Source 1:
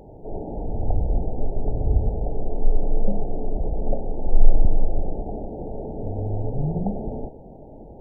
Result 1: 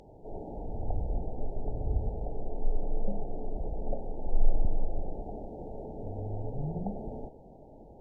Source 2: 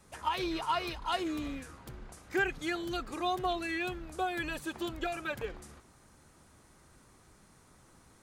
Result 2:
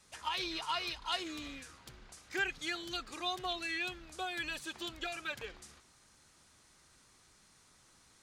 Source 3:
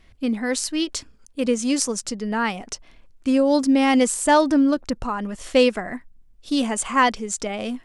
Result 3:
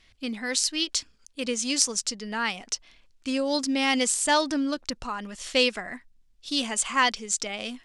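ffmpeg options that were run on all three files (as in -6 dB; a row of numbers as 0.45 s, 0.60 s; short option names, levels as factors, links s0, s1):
-af "equalizer=f=4500:t=o:w=2.9:g=14,volume=0.316"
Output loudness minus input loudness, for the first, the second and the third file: -9.5 LU, -3.0 LU, -4.5 LU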